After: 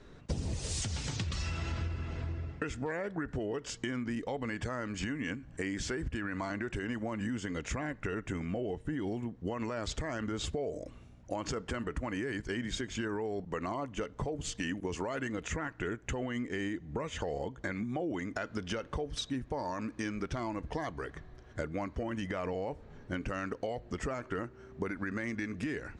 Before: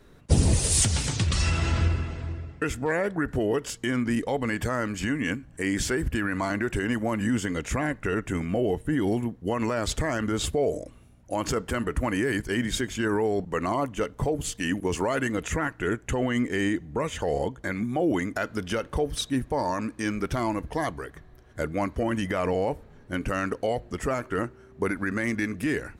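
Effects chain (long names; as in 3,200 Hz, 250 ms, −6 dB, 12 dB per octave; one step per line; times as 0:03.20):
low-pass filter 7,200 Hz 24 dB per octave
downward compressor 6 to 1, threshold −33 dBFS, peak gain reduction 17 dB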